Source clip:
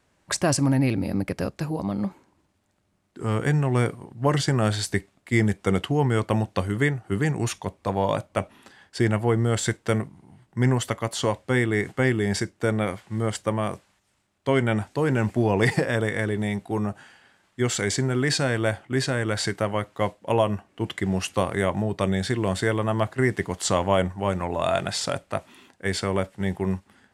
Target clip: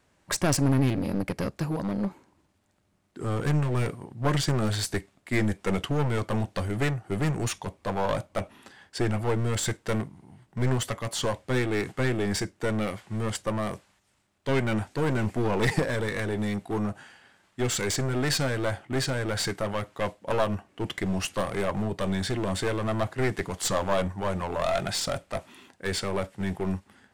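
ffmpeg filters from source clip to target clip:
ffmpeg -i in.wav -af "aeval=exprs='clip(val(0),-1,0.0447)':channel_layout=same" out.wav

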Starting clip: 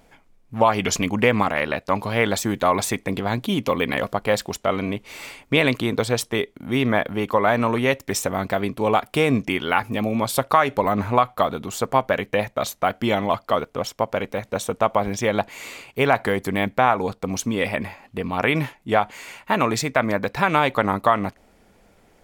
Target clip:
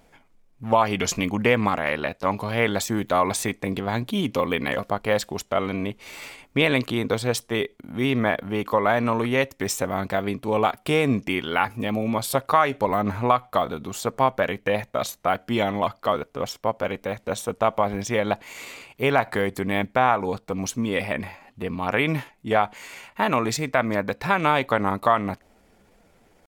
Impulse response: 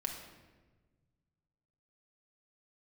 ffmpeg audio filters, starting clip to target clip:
-af "atempo=0.84,volume=-2dB"

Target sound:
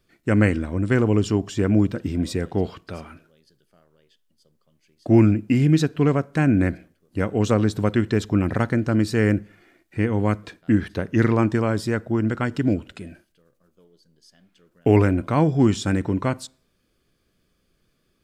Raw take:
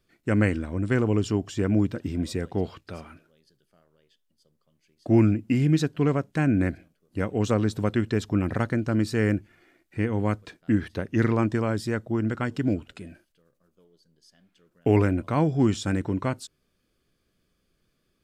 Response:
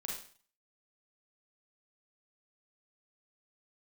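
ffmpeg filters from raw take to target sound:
-filter_complex "[0:a]asplit=2[link_01][link_02];[1:a]atrim=start_sample=2205,highshelf=frequency=3600:gain=-11[link_03];[link_02][link_03]afir=irnorm=-1:irlink=0,volume=-19.5dB[link_04];[link_01][link_04]amix=inputs=2:normalize=0,volume=3.5dB"

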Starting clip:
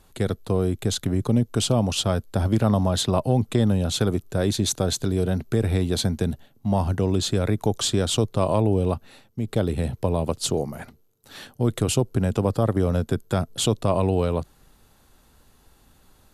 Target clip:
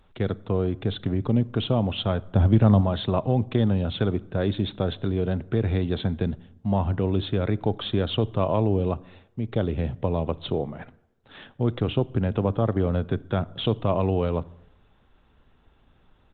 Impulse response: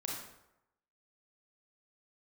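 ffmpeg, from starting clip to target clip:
-filter_complex "[0:a]asplit=3[link_01][link_02][link_03];[link_01]afade=type=out:start_time=2.21:duration=0.02[link_04];[link_02]lowshelf=frequency=240:gain=7.5,afade=type=in:start_time=2.21:duration=0.02,afade=type=out:start_time=2.8:duration=0.02[link_05];[link_03]afade=type=in:start_time=2.8:duration=0.02[link_06];[link_04][link_05][link_06]amix=inputs=3:normalize=0,asplit=2[link_07][link_08];[1:a]atrim=start_sample=2205,lowshelf=frequency=140:gain=6.5[link_09];[link_08][link_09]afir=irnorm=-1:irlink=0,volume=-19.5dB[link_10];[link_07][link_10]amix=inputs=2:normalize=0,aresample=8000,aresample=44100,volume=-2.5dB" -ar 48000 -c:a libopus -b:a 20k

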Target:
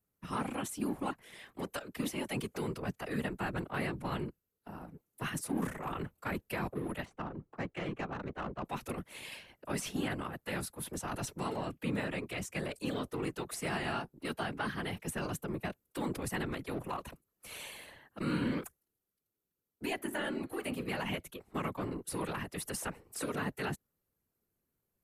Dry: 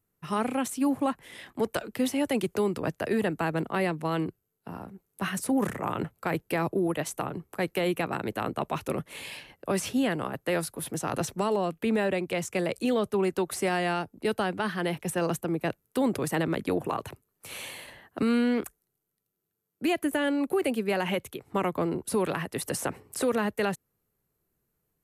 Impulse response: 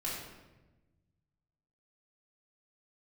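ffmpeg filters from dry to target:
-filter_complex "[0:a]asettb=1/sr,asplit=3[link_01][link_02][link_03];[link_01]atrim=end=19.954[link_04];[link_02]atrim=start=19.95:end=21.01,asetpts=PTS-STARTPTS,afade=type=in:duration=0.004:curve=qsin,afade=type=out:start_time=1.056:duration=0.004:curve=qsin,bandreject=frequency=153:width_type=h:width=4,bandreject=frequency=306:width_type=h:width=4,bandreject=frequency=459:width_type=h:width=4,bandreject=frequency=612:width_type=h:width=4,bandreject=frequency=765:width_type=h:width=4,bandreject=frequency=918:width_type=h:width=4,bandreject=frequency=1071:width_type=h:width=4,bandreject=frequency=1224:width_type=h:width=4,bandreject=frequency=1377:width_type=h:width=4,bandreject=frequency=1530:width_type=h:width=4,bandreject=frequency=1683:width_type=h:width=4,bandreject=frequency=1836:width_type=h:width=4,bandreject=frequency=1989:width_type=h:width=4,bandreject=frequency=2142:width_type=h:width=4,bandreject=frequency=2295:width_type=h:width=4,bandreject=frequency=2448:width_type=h:width=4,bandreject=frequency=2601:width_type=h:width=4,bandreject=frequency=2754:width_type=h:width=4,bandreject=frequency=2907:width_type=h:width=4,bandreject=frequency=3060:width_type=h:width=4,bandreject=frequency=3213:width_type=h:width=4,bandreject=frequency=3366:width_type=h:width=4,bandreject=frequency=3519:width_type=h:width=4,bandreject=frequency=3672:width_type=h:width=4,bandreject=frequency=3825:width_type=h:width=4,bandreject=frequency=3978:width_type=h:width=4,bandreject=frequency=4131:width_type=h:width=4,bandreject=frequency=4284:width_type=h:width=4,bandreject=frequency=4437:width_type=h:width=4,bandreject=frequency=4590:width_type=h:width=4,bandreject=frequency=4743:width_type=h:width=4,bandreject=frequency=4896:width_type=h:width=4,bandreject=frequency=5049:width_type=h:width=4[link_05];[link_03]atrim=start=21.006[link_06];[link_04][link_05]acrossfade=duration=0.004:curve1=hsin:curve2=qsin[link_07];[link_07][link_06]acrossfade=duration=0.004:curve1=qsin:curve2=hsin,acrossover=split=270|830|2400[link_08][link_09][link_10][link_11];[link_09]asoftclip=type=tanh:threshold=-36.5dB[link_12];[link_08][link_12][link_10][link_11]amix=inputs=4:normalize=0,asettb=1/sr,asplit=3[link_13][link_14][link_15];[link_13]atrim=end=7.054[link_16];[link_14]atrim=start=7.05:end=8.65,asetpts=PTS-STARTPTS,afade=type=in:duration=0.004:curve=qsin,afade=type=out:start_time=1.596:duration=0.004:curve=qsin,adynamicsmooth=sensitivity=1.5:basefreq=1600[link_17];[link_15]atrim=start=8.646[link_18];[link_16][link_17]acrossfade=duration=0.004:curve1=hsin:curve2=qsin[link_19];[link_19][link_18]acrossfade=duration=0.004:curve1=qsin:curve2=hsin,afftfilt=real='hypot(re,im)*cos(2*PI*random(0))':imag='hypot(re,im)*sin(2*PI*random(1))':win_size=512:overlap=0.75"

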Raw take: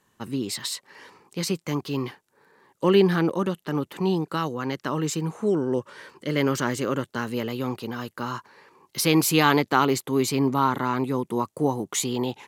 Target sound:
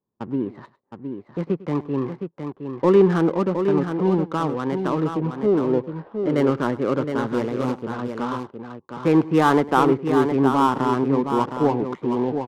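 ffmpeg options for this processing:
ffmpeg -i in.wav -filter_complex "[0:a]lowpass=1200,agate=range=-16dB:threshold=-47dB:ratio=16:detection=peak,lowshelf=frequency=160:gain=-7,asplit=2[link_01][link_02];[link_02]asoftclip=type=tanh:threshold=-17.5dB,volume=-5dB[link_03];[link_01][link_03]amix=inputs=2:normalize=0,asettb=1/sr,asplit=3[link_04][link_05][link_06];[link_04]atrim=end=7.274[link_07];[link_05]atrim=start=7.27:end=7.83,asetpts=PTS-STARTPTS,afade=type=in:duration=0.004:curve=qsin,afade=type=out:start_time=0.556:duration=0.004:curve=qsin,acrusher=bits=3:mode=log:mix=0:aa=0.000001[link_08];[link_06]atrim=start=7.826[link_09];[link_07][link_08]acrossfade=duration=0.004:curve1=hsin:curve2=qsin[link_10];[link_10][link_09]acrossfade=duration=0.004:curve1=qsin:curve2=hsin,adynamicsmooth=sensitivity=5:basefreq=680,asplit=2[link_11][link_12];[link_12]aecho=0:1:102|715:0.112|0.447[link_13];[link_11][link_13]amix=inputs=2:normalize=0,volume=2dB" out.wav

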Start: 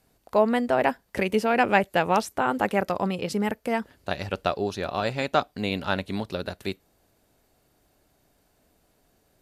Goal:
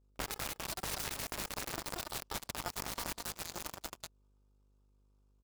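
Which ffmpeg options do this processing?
ffmpeg -i in.wav -filter_complex "[0:a]acrossover=split=410 5900:gain=0.141 1 0.0794[link_01][link_02][link_03];[link_01][link_02][link_03]amix=inputs=3:normalize=0,aecho=1:1:5.7:0.34,aecho=1:1:333:0.668,acrossover=split=120|1500[link_04][link_05][link_06];[link_05]acrusher=samples=36:mix=1:aa=0.000001[link_07];[link_04][link_07][link_06]amix=inputs=3:normalize=0,adynamicequalizer=threshold=0.0141:dfrequency=1100:dqfactor=0.76:tfrequency=1100:tqfactor=0.76:attack=5:release=100:ratio=0.375:range=2.5:mode=cutabove:tftype=bell,aeval=exprs='(mod(14.1*val(0)+1,2)-1)/14.1':channel_layout=same,asetrate=76440,aresample=44100,bandreject=frequency=3100:width=6.9,alimiter=level_in=6dB:limit=-24dB:level=0:latency=1:release=124,volume=-6dB,aeval=exprs='val(0)+0.00398*(sin(2*PI*50*n/s)+sin(2*PI*2*50*n/s)/2+sin(2*PI*3*50*n/s)/3+sin(2*PI*4*50*n/s)/4+sin(2*PI*5*50*n/s)/5)':channel_layout=same,aeval=exprs='0.0398*(cos(1*acos(clip(val(0)/0.0398,-1,1)))-cos(1*PI/2))+0.0141*(cos(3*acos(clip(val(0)/0.0398,-1,1)))-cos(3*PI/2))':channel_layout=same,volume=7dB" out.wav

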